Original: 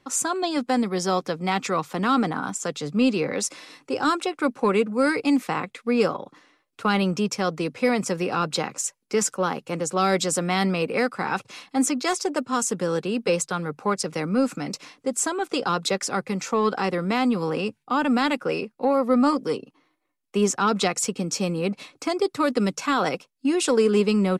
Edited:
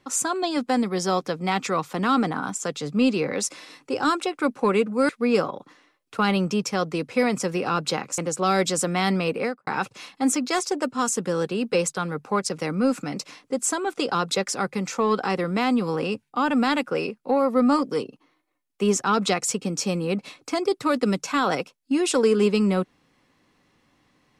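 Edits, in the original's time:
5.09–5.75 s: delete
8.84–9.72 s: delete
10.89–11.21 s: studio fade out

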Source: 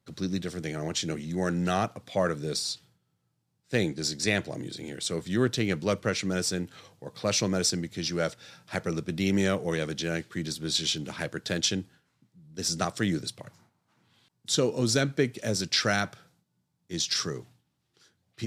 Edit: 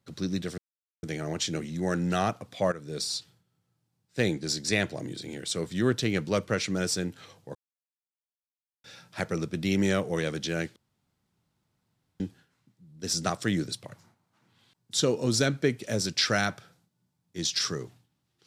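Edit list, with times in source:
0.58 s: insert silence 0.45 s
2.27–2.65 s: fade in, from -14.5 dB
7.10–8.39 s: mute
10.31–11.75 s: room tone

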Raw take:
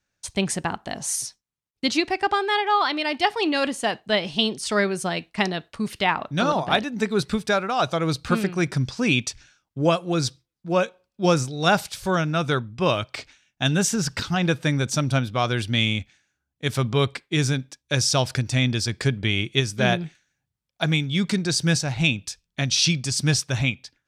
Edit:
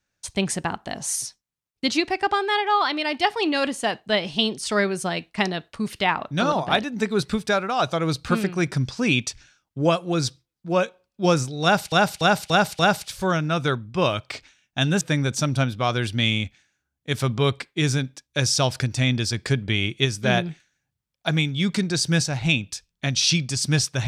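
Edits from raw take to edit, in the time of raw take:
11.63–11.92 s: loop, 5 plays
13.85–14.56 s: delete

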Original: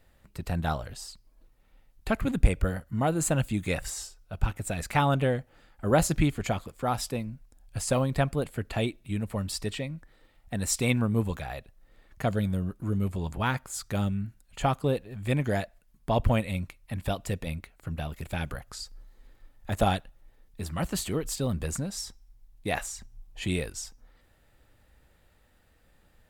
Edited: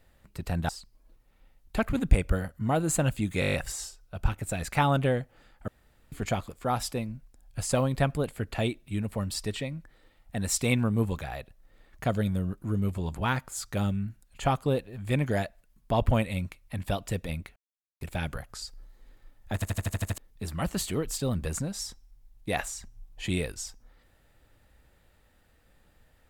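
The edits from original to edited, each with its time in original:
0.69–1.01 s: delete
3.72 s: stutter 0.02 s, 8 plays
5.86–6.30 s: room tone
17.74–18.19 s: mute
19.72 s: stutter in place 0.08 s, 8 plays

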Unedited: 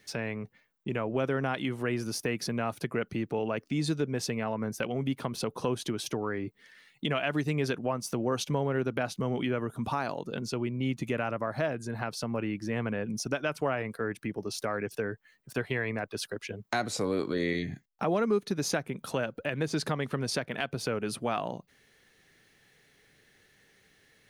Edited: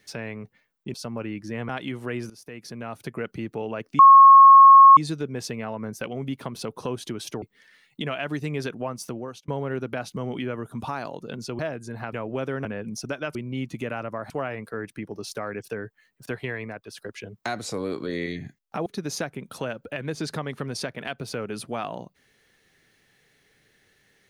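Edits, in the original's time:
0.94–1.46 s: swap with 12.12–12.87 s
2.07–3.01 s: fade in, from -17.5 dB
3.76 s: add tone 1.09 kHz -6.5 dBFS 0.98 s
6.21–6.46 s: delete
8.07–8.52 s: fade out
10.63–11.58 s: move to 13.57 s
15.75–16.24 s: fade out linear, to -7.5 dB
18.13–18.39 s: delete

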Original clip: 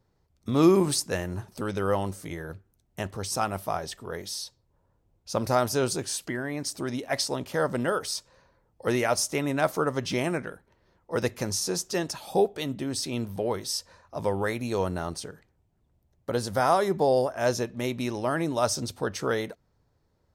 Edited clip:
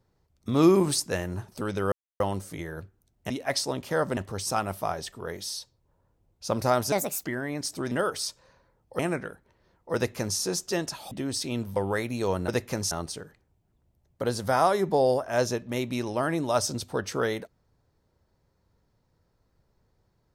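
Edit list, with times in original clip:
1.92 s: insert silence 0.28 s
5.77–6.26 s: speed 152%
6.93–7.80 s: move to 3.02 s
8.88–10.21 s: delete
11.17–11.60 s: copy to 14.99 s
12.33–12.73 s: delete
13.38–14.27 s: delete

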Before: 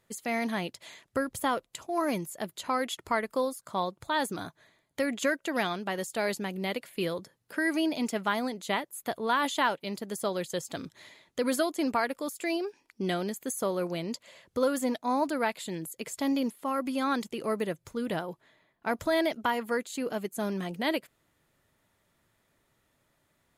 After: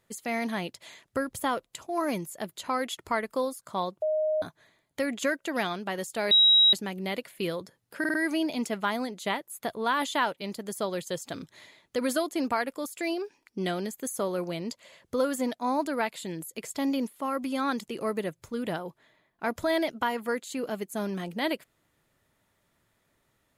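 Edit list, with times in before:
4.02–4.42 s: bleep 620 Hz -23.5 dBFS
6.31 s: add tone 3.84 kHz -15.5 dBFS 0.42 s
7.57 s: stutter 0.05 s, 4 plays

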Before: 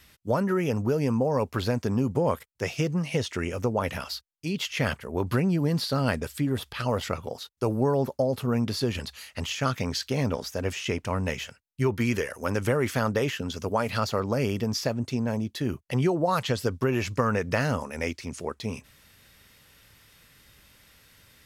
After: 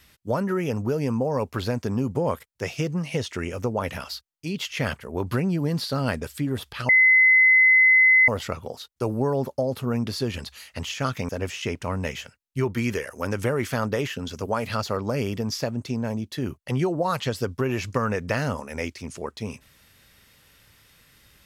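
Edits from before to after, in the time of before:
6.89 s: add tone 2.04 kHz -12.5 dBFS 1.39 s
9.90–10.52 s: delete

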